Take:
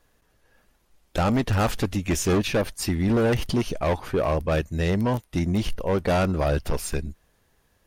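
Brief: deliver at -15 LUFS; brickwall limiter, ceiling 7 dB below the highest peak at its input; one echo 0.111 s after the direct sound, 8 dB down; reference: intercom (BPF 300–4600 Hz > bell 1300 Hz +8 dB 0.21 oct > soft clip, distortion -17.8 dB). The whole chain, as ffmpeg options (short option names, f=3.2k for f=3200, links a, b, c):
-af "alimiter=limit=-23.5dB:level=0:latency=1,highpass=300,lowpass=4.6k,equalizer=f=1.3k:t=o:w=0.21:g=8,aecho=1:1:111:0.398,asoftclip=threshold=-22.5dB,volume=19dB"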